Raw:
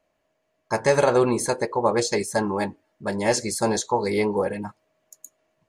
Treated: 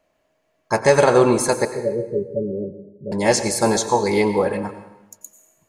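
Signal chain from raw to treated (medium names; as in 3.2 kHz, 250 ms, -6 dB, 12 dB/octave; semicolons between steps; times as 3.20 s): 1.65–3.12 s: rippled Chebyshev low-pass 590 Hz, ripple 9 dB; on a send: reverberation RT60 0.95 s, pre-delay 82 ms, DRR 10 dB; on the sum: trim +4.5 dB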